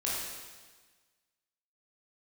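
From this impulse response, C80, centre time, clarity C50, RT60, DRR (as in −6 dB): 1.0 dB, 95 ms, −2.0 dB, 1.4 s, −6.5 dB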